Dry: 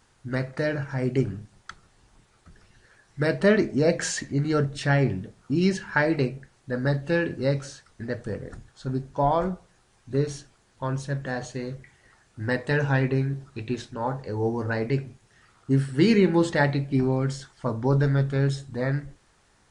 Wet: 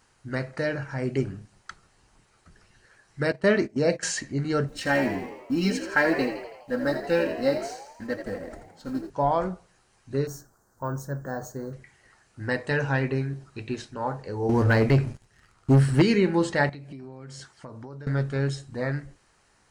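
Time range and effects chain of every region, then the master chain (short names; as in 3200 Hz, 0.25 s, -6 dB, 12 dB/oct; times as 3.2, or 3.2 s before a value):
3.32–4.03 HPF 47 Hz 6 dB/oct + gate -29 dBFS, range -15 dB
4.68–9.1 G.711 law mismatch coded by A + comb 3.8 ms, depth 74% + frequency-shifting echo 83 ms, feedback 56%, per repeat +67 Hz, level -9 dB
10.27–11.73 EQ curve 1500 Hz 0 dB, 2600 Hz -30 dB, 6200 Hz 0 dB + careless resampling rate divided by 2×, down filtered, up hold
14.49–16.02 low shelf 120 Hz +12 dB + sample leveller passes 2
16.69–18.07 HPF 59 Hz + compressor 20:1, threshold -34 dBFS
whole clip: low shelf 350 Hz -4 dB; notch 3500 Hz, Q 11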